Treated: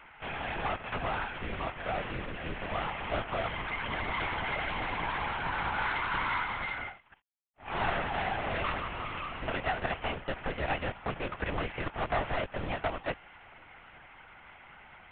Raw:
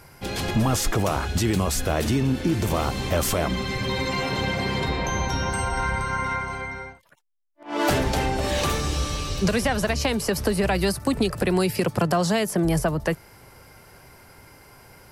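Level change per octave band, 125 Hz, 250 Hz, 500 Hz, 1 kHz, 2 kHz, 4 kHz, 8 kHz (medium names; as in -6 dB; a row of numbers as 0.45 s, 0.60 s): -15.0 dB, -17.0 dB, -11.5 dB, -5.0 dB, -4.0 dB, -11.0 dB, under -40 dB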